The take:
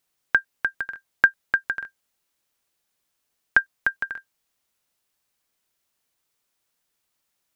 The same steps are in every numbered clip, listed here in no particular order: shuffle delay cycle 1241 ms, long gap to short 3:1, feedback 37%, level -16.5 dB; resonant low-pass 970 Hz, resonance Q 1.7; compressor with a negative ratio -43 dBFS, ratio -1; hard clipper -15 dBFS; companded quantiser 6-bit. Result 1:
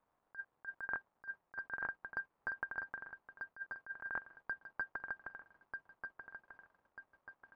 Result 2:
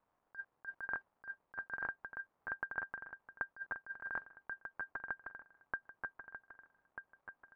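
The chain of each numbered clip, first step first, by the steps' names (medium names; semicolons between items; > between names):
hard clipper > shuffle delay > companded quantiser > resonant low-pass > compressor with a negative ratio; companded quantiser > shuffle delay > hard clipper > resonant low-pass > compressor with a negative ratio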